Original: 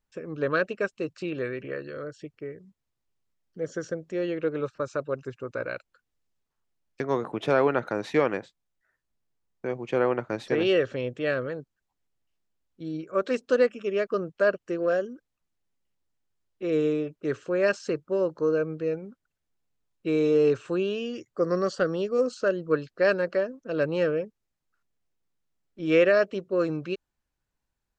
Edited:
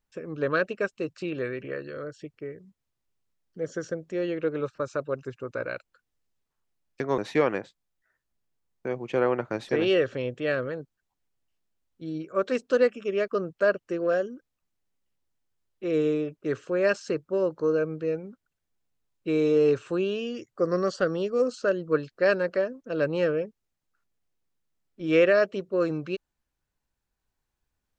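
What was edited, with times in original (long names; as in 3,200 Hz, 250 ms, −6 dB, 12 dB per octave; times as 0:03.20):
0:07.18–0:07.97: remove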